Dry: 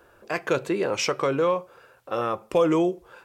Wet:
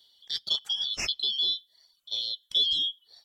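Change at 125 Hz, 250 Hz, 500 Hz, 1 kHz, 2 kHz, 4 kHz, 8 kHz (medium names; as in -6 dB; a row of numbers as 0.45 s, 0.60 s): under -20 dB, under -25 dB, -31.0 dB, -26.0 dB, -10.5 dB, +13.5 dB, -4.5 dB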